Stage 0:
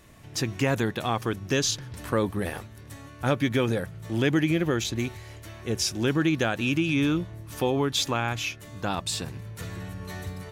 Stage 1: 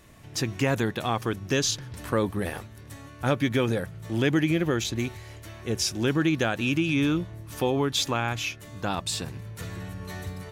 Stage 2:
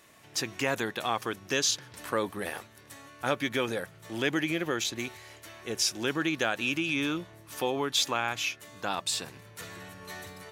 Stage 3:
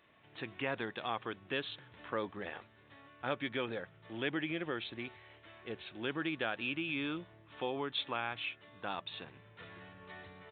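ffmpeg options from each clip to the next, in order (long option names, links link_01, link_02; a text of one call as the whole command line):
ffmpeg -i in.wav -af anull out.wav
ffmpeg -i in.wav -af "highpass=frequency=600:poles=1" out.wav
ffmpeg -i in.wav -af "aresample=8000,aresample=44100,volume=-7.5dB" out.wav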